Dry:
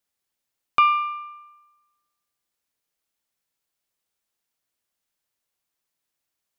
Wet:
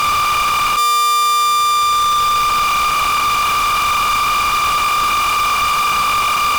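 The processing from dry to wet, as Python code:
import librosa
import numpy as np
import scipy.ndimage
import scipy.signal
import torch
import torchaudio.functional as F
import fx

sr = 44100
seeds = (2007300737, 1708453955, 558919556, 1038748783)

y = fx.bin_compress(x, sr, power=0.2)
y = scipy.signal.sosfilt(scipy.signal.butter(4, 700.0, 'highpass', fs=sr, output='sos'), y)
y = fx.leveller(y, sr, passes=1)
y = fx.fuzz(y, sr, gain_db=38.0, gate_db=-43.0)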